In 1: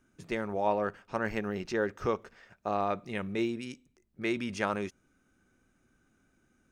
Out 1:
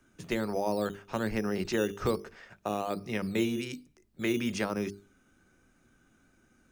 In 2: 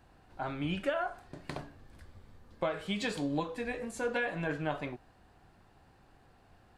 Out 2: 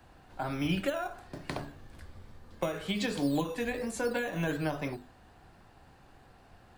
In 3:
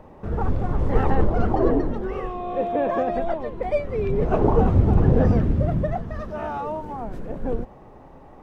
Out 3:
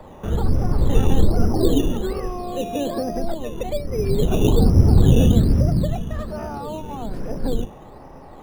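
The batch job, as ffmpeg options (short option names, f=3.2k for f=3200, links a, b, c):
-filter_complex "[0:a]bandreject=f=50:t=h:w=6,bandreject=f=100:t=h:w=6,bandreject=f=150:t=h:w=6,bandreject=f=200:t=h:w=6,bandreject=f=250:t=h:w=6,bandreject=f=300:t=h:w=6,bandreject=f=350:t=h:w=6,bandreject=f=400:t=h:w=6,bandreject=f=450:t=h:w=6,acrossover=split=140|430[a][b][c];[b]acrusher=samples=11:mix=1:aa=0.000001:lfo=1:lforange=6.6:lforate=1.2[d];[c]acompressor=threshold=-38dB:ratio=6[e];[a][d][e]amix=inputs=3:normalize=0,volume=5dB"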